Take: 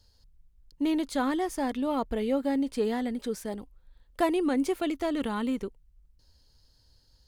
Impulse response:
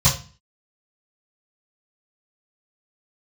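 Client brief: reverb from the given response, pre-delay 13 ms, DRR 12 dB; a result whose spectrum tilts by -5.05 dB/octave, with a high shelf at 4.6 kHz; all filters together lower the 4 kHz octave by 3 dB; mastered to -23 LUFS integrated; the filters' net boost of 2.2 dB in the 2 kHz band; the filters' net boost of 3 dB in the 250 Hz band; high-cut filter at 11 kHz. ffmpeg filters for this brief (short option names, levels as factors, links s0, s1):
-filter_complex "[0:a]lowpass=11000,equalizer=f=250:t=o:g=3.5,equalizer=f=2000:t=o:g=4,equalizer=f=4000:t=o:g=-4,highshelf=f=4600:g=-3.5,asplit=2[s0][s1];[1:a]atrim=start_sample=2205,adelay=13[s2];[s1][s2]afir=irnorm=-1:irlink=0,volume=0.0355[s3];[s0][s3]amix=inputs=2:normalize=0,volume=1.58"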